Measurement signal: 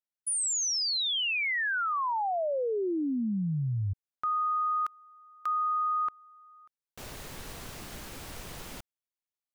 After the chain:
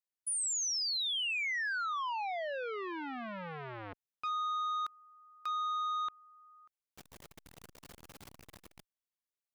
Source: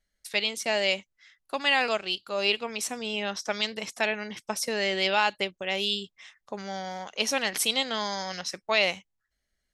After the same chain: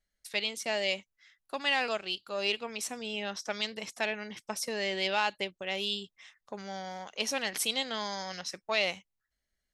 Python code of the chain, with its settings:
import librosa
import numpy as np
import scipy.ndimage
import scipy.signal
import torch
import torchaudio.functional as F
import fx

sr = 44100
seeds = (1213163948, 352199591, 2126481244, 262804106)

y = fx.transformer_sat(x, sr, knee_hz=1200.0)
y = F.gain(torch.from_numpy(y), -4.5).numpy()